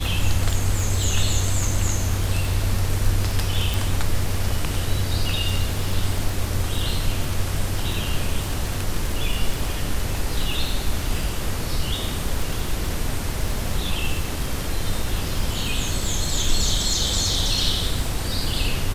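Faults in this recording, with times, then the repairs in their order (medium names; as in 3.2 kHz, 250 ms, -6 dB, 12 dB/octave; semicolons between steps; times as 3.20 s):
crackle 51 per s -25 dBFS
3.74 s: pop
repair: de-click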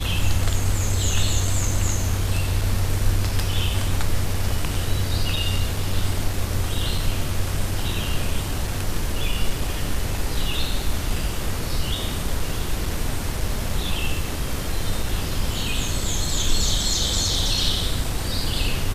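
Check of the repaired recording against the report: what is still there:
3.74 s: pop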